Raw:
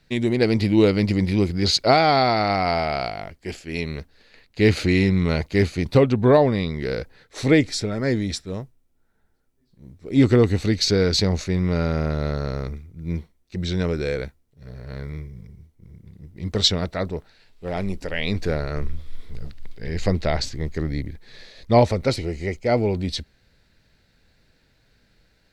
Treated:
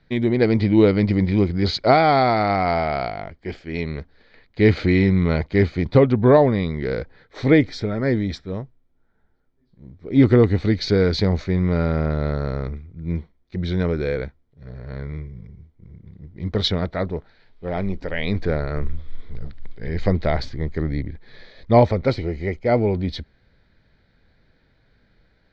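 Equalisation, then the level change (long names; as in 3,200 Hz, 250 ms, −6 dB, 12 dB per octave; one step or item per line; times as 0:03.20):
low-pass filter 4,100 Hz 12 dB per octave
high-frequency loss of the air 120 metres
notch filter 2,700 Hz, Q 6.5
+2.0 dB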